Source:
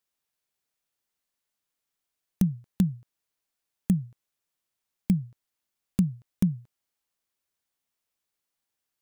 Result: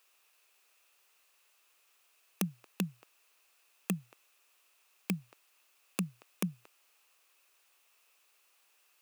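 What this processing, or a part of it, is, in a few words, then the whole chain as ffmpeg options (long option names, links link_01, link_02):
laptop speaker: -af "highpass=frequency=370:width=0.5412,highpass=frequency=370:width=1.3066,equalizer=frequency=1200:width_type=o:width=0.42:gain=5.5,equalizer=frequency=2600:width_type=o:width=0.26:gain=11,alimiter=level_in=7dB:limit=-24dB:level=0:latency=1:release=18,volume=-7dB,volume=14dB"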